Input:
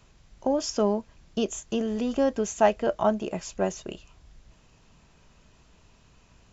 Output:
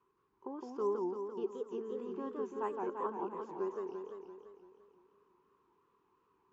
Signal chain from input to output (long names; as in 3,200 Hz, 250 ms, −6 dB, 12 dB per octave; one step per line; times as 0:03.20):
pair of resonant band-passes 640 Hz, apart 1.4 octaves
feedback echo with a swinging delay time 170 ms, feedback 63%, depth 209 cents, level −3.5 dB
level −4 dB